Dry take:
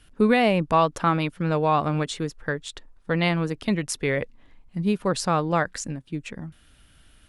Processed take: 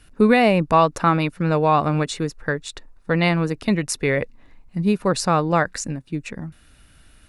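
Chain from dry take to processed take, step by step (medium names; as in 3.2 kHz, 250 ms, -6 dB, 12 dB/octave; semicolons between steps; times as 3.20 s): band-stop 3.2 kHz, Q 6.7; trim +4 dB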